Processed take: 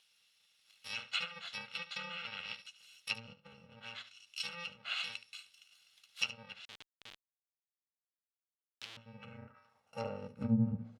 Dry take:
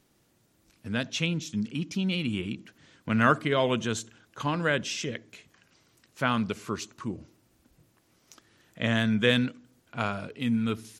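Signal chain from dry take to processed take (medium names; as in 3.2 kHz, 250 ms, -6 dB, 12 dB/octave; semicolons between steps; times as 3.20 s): bit-reversed sample order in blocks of 128 samples; low-pass that closes with the level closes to 350 Hz, closed at -20.5 dBFS; 1.77–2.56 s: low-pass 8.1 kHz 12 dB/octave; on a send: early reflections 10 ms -10 dB, 73 ms -14.5 dB; 6.65–8.97 s: on the sum: Schmitt trigger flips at -34.5 dBFS; band-pass sweep 3.3 kHz -> 200 Hz, 9.11–10.61 s; trim +9 dB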